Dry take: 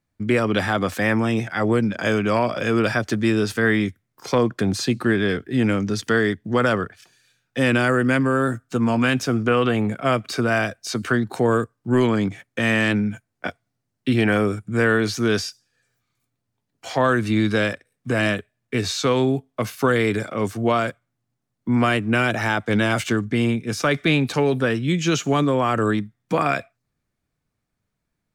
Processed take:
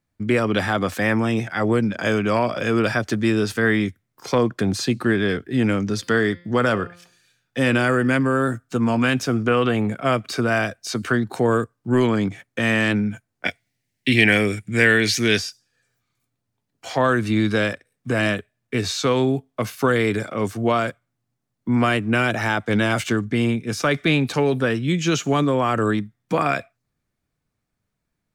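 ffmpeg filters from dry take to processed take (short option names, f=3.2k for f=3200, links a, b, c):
-filter_complex "[0:a]asplit=3[a][b][c];[a]afade=t=out:st=5.94:d=0.02[d];[b]bandreject=f=174.5:t=h:w=4,bandreject=f=349:t=h:w=4,bandreject=f=523.5:t=h:w=4,bandreject=f=698:t=h:w=4,bandreject=f=872.5:t=h:w=4,bandreject=f=1.047k:t=h:w=4,bandreject=f=1.2215k:t=h:w=4,bandreject=f=1.396k:t=h:w=4,bandreject=f=1.5705k:t=h:w=4,bandreject=f=1.745k:t=h:w=4,bandreject=f=1.9195k:t=h:w=4,bandreject=f=2.094k:t=h:w=4,bandreject=f=2.2685k:t=h:w=4,bandreject=f=2.443k:t=h:w=4,bandreject=f=2.6175k:t=h:w=4,bandreject=f=2.792k:t=h:w=4,bandreject=f=2.9665k:t=h:w=4,bandreject=f=3.141k:t=h:w=4,bandreject=f=3.3155k:t=h:w=4,bandreject=f=3.49k:t=h:w=4,bandreject=f=3.6645k:t=h:w=4,bandreject=f=3.839k:t=h:w=4,bandreject=f=4.0135k:t=h:w=4,bandreject=f=4.188k:t=h:w=4,bandreject=f=4.3625k:t=h:w=4,bandreject=f=4.537k:t=h:w=4,bandreject=f=4.7115k:t=h:w=4,bandreject=f=4.886k:t=h:w=4,bandreject=f=5.0605k:t=h:w=4,afade=t=in:st=5.94:d=0.02,afade=t=out:st=8.12:d=0.02[e];[c]afade=t=in:st=8.12:d=0.02[f];[d][e][f]amix=inputs=3:normalize=0,asettb=1/sr,asplit=3[g][h][i];[g]atrim=end=13.454[j];[h]atrim=start=13.45:end=15.38,asetpts=PTS-STARTPTS,afade=t=in:d=0.004:c=qsin,afade=t=out:st=1.926:d=0.004:c=qsin,highshelf=f=1.6k:t=q:w=3:g=7[k];[i]atrim=start=15.376[l];[j][k]acrossfade=d=0.004:c1=hsin:c2=qsin[m];[m][l]acrossfade=d=0.004:c1=qsin:c2=hsin"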